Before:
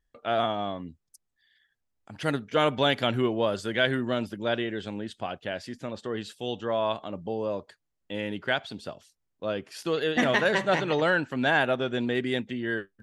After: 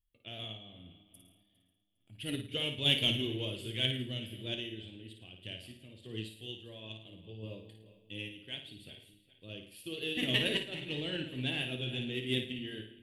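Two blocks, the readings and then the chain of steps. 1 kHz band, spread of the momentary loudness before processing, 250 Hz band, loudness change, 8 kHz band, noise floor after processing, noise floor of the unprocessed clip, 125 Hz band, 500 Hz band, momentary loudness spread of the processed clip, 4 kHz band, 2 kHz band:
-25.0 dB, 12 LU, -9.5 dB, -7.0 dB, -5.0 dB, -73 dBFS, -79 dBFS, -4.0 dB, -15.5 dB, 19 LU, +0.5 dB, -11.5 dB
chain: regenerating reverse delay 0.203 s, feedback 58%, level -14 dB; EQ curve 120 Hz 0 dB, 200 Hz -10 dB, 330 Hz -7 dB, 770 Hz -23 dB, 1400 Hz -26 dB, 2900 Hz +4 dB, 6100 Hz -18 dB, 10000 Hz +6 dB; in parallel at -4 dB: soft clip -26 dBFS, distortion -15 dB; on the sum: random-step tremolo; flange 0.51 Hz, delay 8.5 ms, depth 4.7 ms, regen -64%; on a send: flutter echo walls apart 9.4 m, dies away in 0.53 s; on the sum: upward expander 1.5:1, over -45 dBFS; gain +4 dB

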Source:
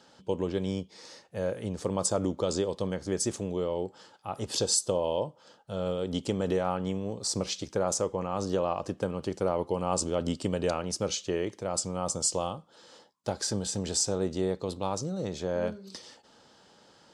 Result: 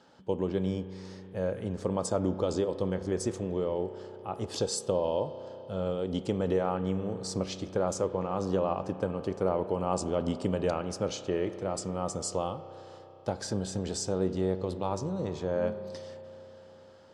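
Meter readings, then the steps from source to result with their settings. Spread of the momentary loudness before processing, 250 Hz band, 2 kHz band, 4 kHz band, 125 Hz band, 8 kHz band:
9 LU, +0.5 dB, -2.0 dB, -6.5 dB, +0.5 dB, -8.5 dB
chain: high shelf 3200 Hz -10 dB; spring tank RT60 3.9 s, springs 32 ms, chirp 75 ms, DRR 11 dB

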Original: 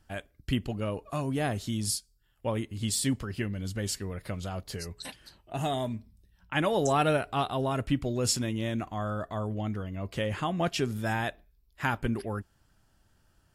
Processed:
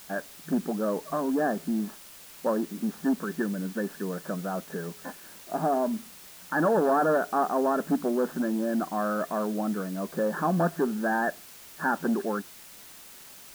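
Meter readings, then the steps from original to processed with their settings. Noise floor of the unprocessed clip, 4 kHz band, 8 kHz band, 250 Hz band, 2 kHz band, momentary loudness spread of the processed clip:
-68 dBFS, -10.5 dB, -8.0 dB, +5.0 dB, +2.5 dB, 19 LU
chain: added harmonics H 3 -15 dB, 5 -9 dB, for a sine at -13 dBFS; FFT band-pass 160–1800 Hz; requantised 8-bit, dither triangular

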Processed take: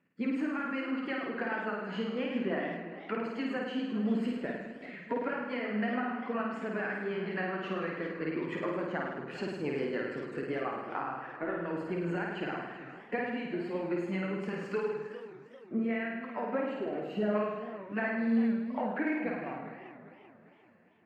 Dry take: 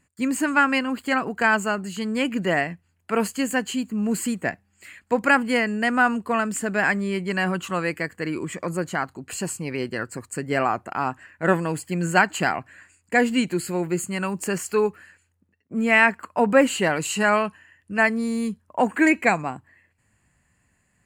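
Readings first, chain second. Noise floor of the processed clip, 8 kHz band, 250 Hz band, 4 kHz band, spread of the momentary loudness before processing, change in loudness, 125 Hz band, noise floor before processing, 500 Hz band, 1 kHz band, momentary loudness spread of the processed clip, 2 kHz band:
-55 dBFS, under -30 dB, -8.5 dB, -14.5 dB, 10 LU, -11.0 dB, -10.5 dB, -68 dBFS, -9.0 dB, -13.5 dB, 7 LU, -15.0 dB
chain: bin magnitudes rounded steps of 15 dB; HPF 250 Hz 12 dB/oct; notch 7100 Hz, Q 14; spectral gain 16.73–17.35, 780–11000 Hz -14 dB; high shelf 4900 Hz -5.5 dB; compressor 6:1, threshold -32 dBFS, peak gain reduction 18.5 dB; flange 1.8 Hz, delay 4.8 ms, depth 5.5 ms, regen -46%; rotary speaker horn 7 Hz, later 1.2 Hz, at 12.44; air absorption 290 m; flutter echo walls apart 9 m, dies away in 1.1 s; warbling echo 0.396 s, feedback 46%, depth 204 cents, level -14 dB; gain +6 dB

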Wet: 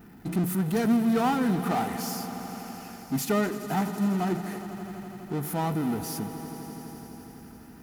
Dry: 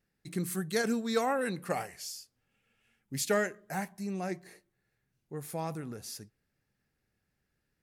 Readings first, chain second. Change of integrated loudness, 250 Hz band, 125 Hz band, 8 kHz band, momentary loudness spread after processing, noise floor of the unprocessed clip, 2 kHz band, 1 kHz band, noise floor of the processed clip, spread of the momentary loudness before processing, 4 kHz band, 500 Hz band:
+5.5 dB, +11.0 dB, +10.0 dB, +1.5 dB, 17 LU, -81 dBFS, +0.5 dB, +7.5 dB, -48 dBFS, 13 LU, +2.0 dB, +2.5 dB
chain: graphic EQ 125/250/500/1000/2000/4000/8000 Hz -3/+8/-5/+6/-7/-10/-12 dB; power-law curve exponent 0.5; notch comb 550 Hz; swelling echo 83 ms, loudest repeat 5, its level -17 dB

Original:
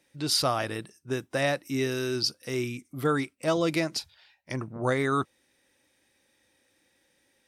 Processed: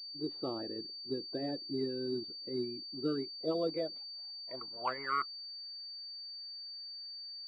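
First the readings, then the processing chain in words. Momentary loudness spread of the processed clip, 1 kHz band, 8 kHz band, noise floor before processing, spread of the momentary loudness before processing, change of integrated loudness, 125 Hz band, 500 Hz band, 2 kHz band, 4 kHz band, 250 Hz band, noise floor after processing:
8 LU, -7.5 dB, under -35 dB, -70 dBFS, 11 LU, -9.5 dB, -16.5 dB, -8.5 dB, -14.5 dB, -5.5 dB, -7.5 dB, -46 dBFS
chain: bin magnitudes rounded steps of 30 dB; band-pass sweep 340 Hz -> 1500 Hz, 3.16–5.57; pulse-width modulation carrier 4600 Hz; gain -2 dB

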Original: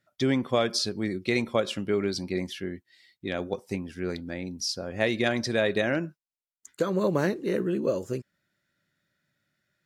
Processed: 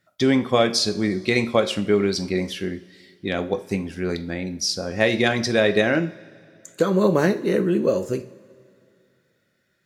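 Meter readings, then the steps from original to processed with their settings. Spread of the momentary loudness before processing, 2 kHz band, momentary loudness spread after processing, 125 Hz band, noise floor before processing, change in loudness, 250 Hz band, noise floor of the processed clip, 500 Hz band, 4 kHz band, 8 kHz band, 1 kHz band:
10 LU, +6.5 dB, 10 LU, +6.0 dB, under -85 dBFS, +6.5 dB, +6.5 dB, -69 dBFS, +6.5 dB, +6.5 dB, +6.5 dB, +6.5 dB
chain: two-slope reverb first 0.41 s, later 2.6 s, from -19 dB, DRR 8.5 dB; gain +6 dB

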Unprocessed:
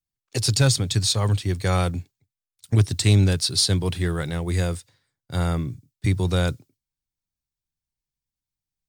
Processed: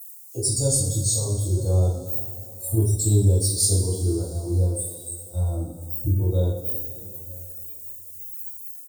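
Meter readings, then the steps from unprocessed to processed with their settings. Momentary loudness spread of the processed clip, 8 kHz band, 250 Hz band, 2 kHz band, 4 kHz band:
15 LU, +5.0 dB, -3.0 dB, under -30 dB, -9.0 dB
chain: switching spikes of -17.5 dBFS; Chebyshev band-stop 420–8400 Hz, order 2; bell 190 Hz -14 dB 0.79 oct; echo 0.942 s -15 dB; spectral noise reduction 23 dB; two-slope reverb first 0.5 s, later 2.9 s, from -15 dB, DRR -8 dB; gain -4 dB

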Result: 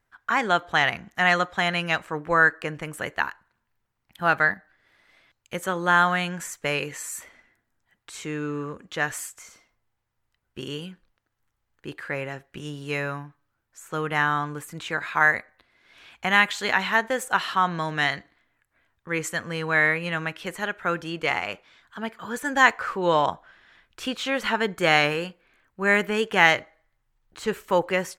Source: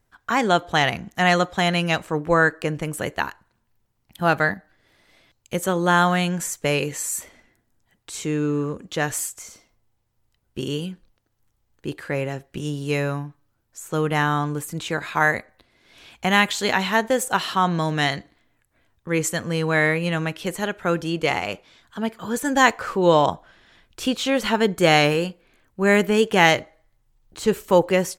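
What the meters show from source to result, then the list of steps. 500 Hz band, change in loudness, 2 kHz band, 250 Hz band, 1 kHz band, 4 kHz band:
-6.0 dB, -2.5 dB, +1.0 dB, -8.0 dB, -2.0 dB, -3.5 dB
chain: bell 1600 Hz +10 dB 2 oct; gain -8.5 dB

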